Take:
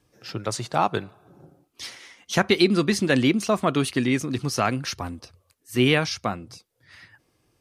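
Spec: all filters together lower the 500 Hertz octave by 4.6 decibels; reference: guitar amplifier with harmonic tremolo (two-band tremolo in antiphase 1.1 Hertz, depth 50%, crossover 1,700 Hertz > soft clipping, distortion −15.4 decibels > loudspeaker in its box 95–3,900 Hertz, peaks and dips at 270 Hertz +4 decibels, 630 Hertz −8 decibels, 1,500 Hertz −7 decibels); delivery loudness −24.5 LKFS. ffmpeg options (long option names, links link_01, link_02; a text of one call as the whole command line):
ffmpeg -i in.wav -filter_complex "[0:a]equalizer=frequency=500:width_type=o:gain=-5,acrossover=split=1700[link_01][link_02];[link_01]aeval=exprs='val(0)*(1-0.5/2+0.5/2*cos(2*PI*1.1*n/s))':channel_layout=same[link_03];[link_02]aeval=exprs='val(0)*(1-0.5/2-0.5/2*cos(2*PI*1.1*n/s))':channel_layout=same[link_04];[link_03][link_04]amix=inputs=2:normalize=0,asoftclip=threshold=-16.5dB,highpass=95,equalizer=frequency=270:width_type=q:width=4:gain=4,equalizer=frequency=630:width_type=q:width=4:gain=-8,equalizer=frequency=1500:width_type=q:width=4:gain=-7,lowpass=frequency=3900:width=0.5412,lowpass=frequency=3900:width=1.3066,volume=4.5dB" out.wav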